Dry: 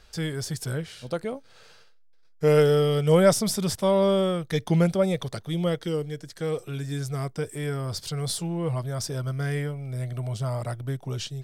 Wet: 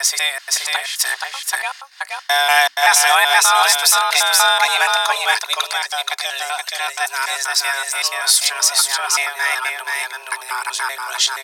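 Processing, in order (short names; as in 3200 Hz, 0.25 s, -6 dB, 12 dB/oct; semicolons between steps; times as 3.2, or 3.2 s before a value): slices in reverse order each 0.191 s, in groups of 3; comb 2.7 ms, depth 32%; frequency shift +270 Hz; HPF 1200 Hz 24 dB/oct; echo 0.476 s -3.5 dB; maximiser +19.5 dB; gain -1 dB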